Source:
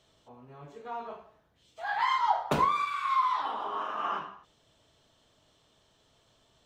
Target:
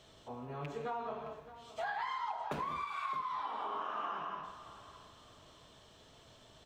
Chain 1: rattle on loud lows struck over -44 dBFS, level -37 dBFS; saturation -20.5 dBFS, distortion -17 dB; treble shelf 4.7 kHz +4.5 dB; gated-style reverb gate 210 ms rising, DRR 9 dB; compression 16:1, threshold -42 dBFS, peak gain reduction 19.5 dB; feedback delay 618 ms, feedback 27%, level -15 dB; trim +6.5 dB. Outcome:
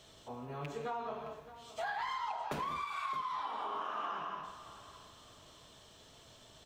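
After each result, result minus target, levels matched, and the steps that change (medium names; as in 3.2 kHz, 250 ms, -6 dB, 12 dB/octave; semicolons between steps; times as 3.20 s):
saturation: distortion +10 dB; 8 kHz band +5.0 dB
change: saturation -14 dBFS, distortion -27 dB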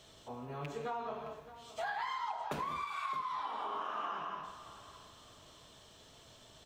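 8 kHz band +5.0 dB
change: treble shelf 4.7 kHz -3 dB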